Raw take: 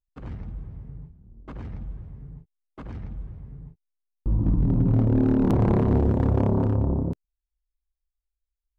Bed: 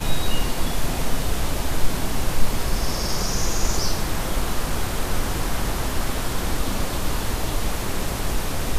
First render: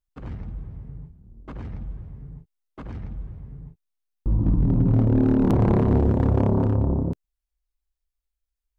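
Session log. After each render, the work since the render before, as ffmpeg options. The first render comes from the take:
-af "volume=1.5dB"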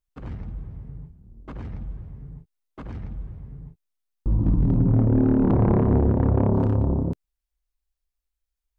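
-filter_complex "[0:a]asettb=1/sr,asplit=3[a][b][c];[a]atrim=end=4.774[d];[b]atrim=start=4.77:end=6.54,asetpts=PTS-STARTPTS,afade=t=in:d=0.004:c=qsin,afade=t=out:st=1.766:d=0.004:c=qsin,lowpass=1.9k[e];[c]atrim=start=6.536[f];[d][e]acrossfade=d=0.004:c1=hsin:c2=qsin[g];[g][f]acrossfade=d=0.004:c1=qsin:c2=hsin"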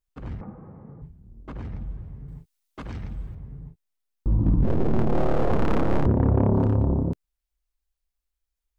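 -filter_complex "[0:a]asettb=1/sr,asplit=3[a][b][c];[a]atrim=end=0.414[d];[b]atrim=start=0.41:end=1.02,asetpts=PTS-STARTPTS,afade=t=in:d=0.004:c=qsin,afade=t=out:st=0.606:d=0.004:c=qsin,highpass=170,equalizer=f=200:t=q:w=4:g=7,equalizer=f=330:t=q:w=4:g=4,equalizer=f=510:t=q:w=4:g=10,equalizer=f=810:t=q:w=4:g=9,equalizer=f=1.2k:t=q:w=4:g=10,lowpass=f=2k:w=0.5412,lowpass=f=2k:w=1.3066[e];[c]atrim=start=1.016[f];[d][e]acrossfade=d=0.004:c1=hsin:c2=qsin[g];[g][f]acrossfade=d=0.004:c1=qsin:c2=hsin,asettb=1/sr,asplit=3[h][i][j];[h]atrim=end=2.284[k];[i]atrim=start=2.28:end=3.35,asetpts=PTS-STARTPTS,afade=t=in:d=0.004:c=qsin,afade=t=out:st=1.066:d=0.004:c=qsin,highshelf=f=2k:g=10.5[l];[j]atrim=start=3.346[m];[k][l]acrossfade=d=0.004:c1=hsin:c2=qsin[n];[n][m]acrossfade=d=0.004:c1=qsin:c2=hsin,asettb=1/sr,asplit=3[o][p][q];[o]atrim=end=4.634[r];[p]atrim=start=4.63:end=6.06,asetpts=PTS-STARTPTS,afade=t=in:d=0.004:c=qsin,afade=t=out:st=1.426:d=0.004:c=qsin,aeval=exprs='abs(val(0))':c=same[s];[q]atrim=start=6.056[t];[r][s]acrossfade=d=0.004:c1=hsin:c2=qsin[u];[u][t]acrossfade=d=0.004:c1=qsin:c2=hsin"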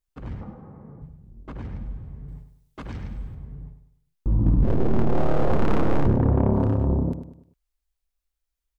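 -af "aecho=1:1:101|202|303|404:0.316|0.123|0.0481|0.0188"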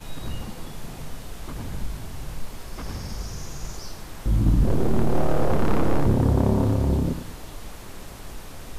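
-filter_complex "[1:a]volume=-14dB[a];[0:a][a]amix=inputs=2:normalize=0"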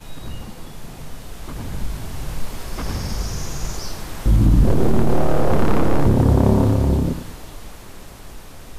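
-af "dynaudnorm=f=200:g=21:m=11.5dB,alimiter=limit=-6dB:level=0:latency=1:release=82"

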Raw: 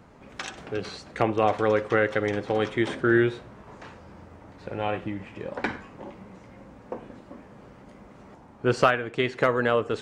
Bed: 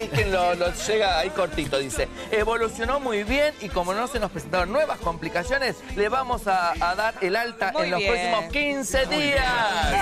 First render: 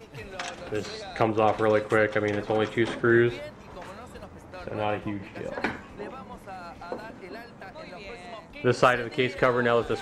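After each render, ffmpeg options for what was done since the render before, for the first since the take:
-filter_complex "[1:a]volume=-19dB[a];[0:a][a]amix=inputs=2:normalize=0"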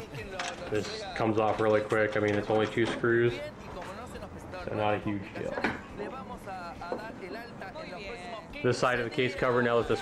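-af "alimiter=limit=-15.5dB:level=0:latency=1:release=23,acompressor=mode=upward:threshold=-36dB:ratio=2.5"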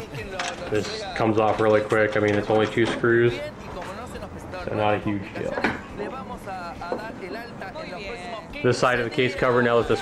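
-af "volume=6.5dB"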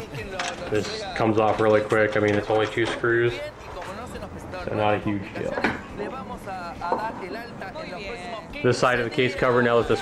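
-filter_complex "[0:a]asettb=1/sr,asplit=3[a][b][c];[a]atrim=end=2.394[d];[b]atrim=start=2.39:end=3.88,asetpts=PTS-STARTPTS,afade=t=in:d=0.004:c=qsin,afade=t=out:st=1.486:d=0.004:c=qsin,equalizer=f=200:t=o:w=0.77:g=-13[e];[c]atrim=start=3.876[f];[d][e]acrossfade=d=0.004:c1=hsin:c2=qsin[g];[g][f]acrossfade=d=0.004:c1=qsin:c2=hsin,asettb=1/sr,asplit=3[h][i][j];[h]atrim=end=6.844[k];[i]atrim=start=6.84:end=7.24,asetpts=PTS-STARTPTS,afade=t=in:d=0.004:c=qsin,afade=t=out:st=0.396:d=0.004:c=qsin,equalizer=f=950:t=o:w=0.52:g=12.5[l];[j]atrim=start=7.236[m];[k][l]acrossfade=d=0.004:c1=hsin:c2=qsin[n];[n][m]acrossfade=d=0.004:c1=qsin:c2=hsin"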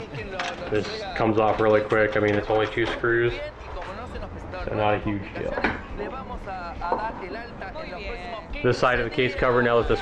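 -af "asubboost=boost=4:cutoff=67,lowpass=4.6k"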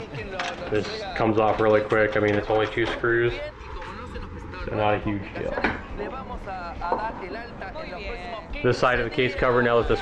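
-filter_complex "[0:a]asettb=1/sr,asplit=3[a][b][c];[a]atrim=end=3.514[d];[b]atrim=start=3.51:end=4.72,asetpts=PTS-STARTPTS,afade=t=in:d=0.004:c=qsin,afade=t=out:st=1.206:d=0.004:c=qsin,asuperstop=centerf=660:order=12:qfactor=2.2[e];[c]atrim=start=4.716[f];[d][e]acrossfade=d=0.004:c1=hsin:c2=qsin[g];[g][f]acrossfade=d=0.004:c1=qsin:c2=hsin"

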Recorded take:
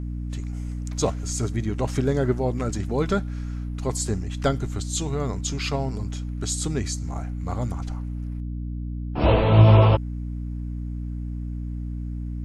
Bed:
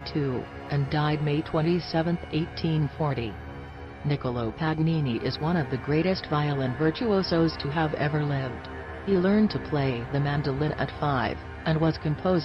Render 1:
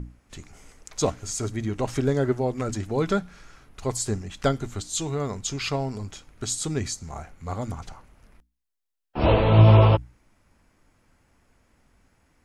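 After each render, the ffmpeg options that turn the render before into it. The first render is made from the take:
-af "bandreject=f=60:t=h:w=6,bandreject=f=120:t=h:w=6,bandreject=f=180:t=h:w=6,bandreject=f=240:t=h:w=6,bandreject=f=300:t=h:w=6"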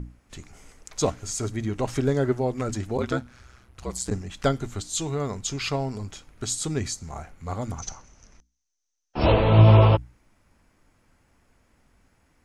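-filter_complex "[0:a]asplit=3[a][b][c];[a]afade=t=out:st=2.97:d=0.02[d];[b]aeval=exprs='val(0)*sin(2*PI*63*n/s)':c=same,afade=t=in:st=2.97:d=0.02,afade=t=out:st=4.1:d=0.02[e];[c]afade=t=in:st=4.1:d=0.02[f];[d][e][f]amix=inputs=3:normalize=0,asettb=1/sr,asplit=3[g][h][i];[g]atrim=end=7.784[j];[h]atrim=start=7.78:end=9.32,asetpts=PTS-STARTPTS,afade=t=in:d=0.004:c=qsin,afade=t=out:st=1.536:d=0.004:c=qsin,lowpass=f=6.1k:t=q:w=14[k];[i]atrim=start=9.316[l];[j][k]acrossfade=d=0.004:c1=hsin:c2=qsin[m];[m][l]acrossfade=d=0.004:c1=qsin:c2=hsin"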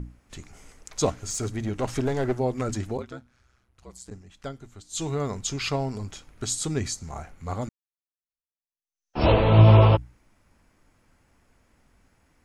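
-filter_complex "[0:a]asettb=1/sr,asplit=3[a][b][c];[a]atrim=end=1.234[d];[b]atrim=start=1.23:end=2.38,asetpts=PTS-STARTPTS,afade=t=in:d=0.004:c=qsin,afade=t=out:st=1.146:d=0.004:c=qsin,aeval=exprs='clip(val(0),-1,0.0596)':c=same[e];[c]atrim=start=2.376[f];[d][e]acrossfade=d=0.004:c1=hsin:c2=qsin[g];[g][f]acrossfade=d=0.004:c1=qsin:c2=hsin,asplit=4[h][i][j][k];[h]atrim=end=3.04,asetpts=PTS-STARTPTS,afade=t=out:st=2.9:d=0.14:silence=0.211349[l];[i]atrim=start=3.04:end=4.89,asetpts=PTS-STARTPTS,volume=-13.5dB[m];[j]atrim=start=4.89:end=7.69,asetpts=PTS-STARTPTS,afade=t=in:d=0.14:silence=0.211349,afade=t=out:st=2.796:d=0.004:c=hsin[n];[k]atrim=start=7.69,asetpts=PTS-STARTPTS,afade=t=in:d=1.48:c=exp[o];[l][m][n][o]concat=n=4:v=0:a=1"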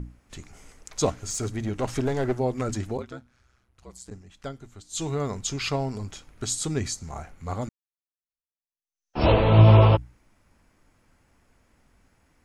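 -af anull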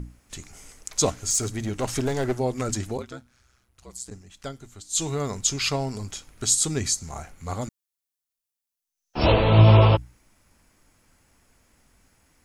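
-af "highshelf=f=4.1k:g=11"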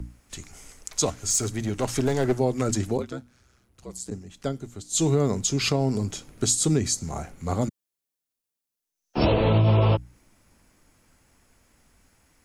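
-filter_complex "[0:a]acrossover=split=110|570|1600[a][b][c][d];[b]dynaudnorm=f=470:g=13:m=11dB[e];[a][e][c][d]amix=inputs=4:normalize=0,alimiter=limit=-11.5dB:level=0:latency=1:release=222"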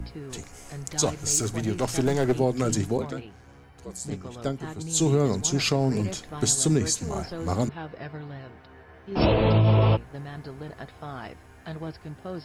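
-filter_complex "[1:a]volume=-12dB[a];[0:a][a]amix=inputs=2:normalize=0"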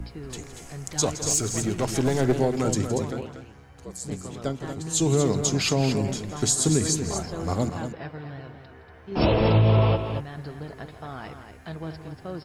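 -af "aecho=1:1:166|236:0.188|0.376"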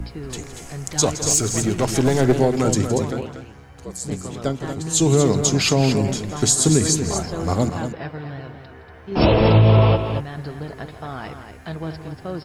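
-af "volume=5.5dB"

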